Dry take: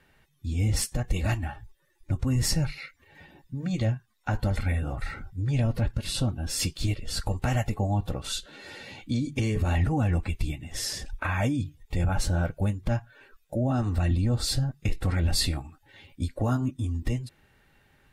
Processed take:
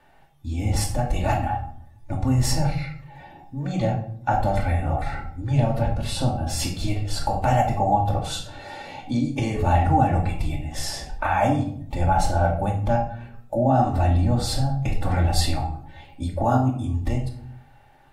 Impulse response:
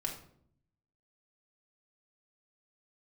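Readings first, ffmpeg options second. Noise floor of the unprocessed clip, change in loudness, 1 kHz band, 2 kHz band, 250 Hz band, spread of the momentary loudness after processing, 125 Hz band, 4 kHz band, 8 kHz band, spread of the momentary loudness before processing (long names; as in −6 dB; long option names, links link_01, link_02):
−67 dBFS, +4.5 dB, +14.5 dB, +3.0 dB, +4.5 dB, 12 LU, +3.5 dB, +1.0 dB, +0.5 dB, 10 LU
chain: -filter_complex "[0:a]equalizer=frequency=780:width_type=o:width=0.74:gain=15[link_01];[1:a]atrim=start_sample=2205[link_02];[link_01][link_02]afir=irnorm=-1:irlink=0"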